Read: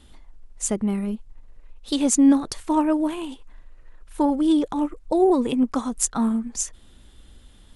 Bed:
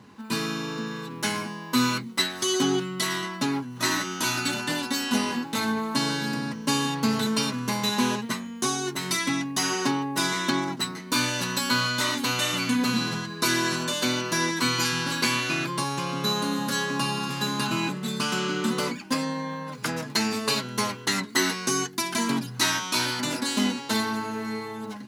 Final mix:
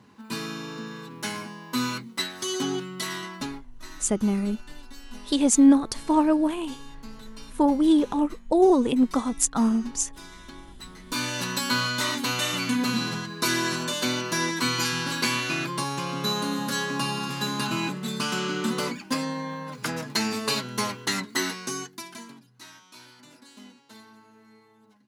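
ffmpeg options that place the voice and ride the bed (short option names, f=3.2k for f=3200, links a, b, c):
-filter_complex "[0:a]adelay=3400,volume=0dB[a];[1:a]volume=14.5dB,afade=t=out:st=3.39:d=0.24:silence=0.16788,afade=t=in:st=10.76:d=0.69:silence=0.112202,afade=t=out:st=21.04:d=1.31:silence=0.0749894[b];[a][b]amix=inputs=2:normalize=0"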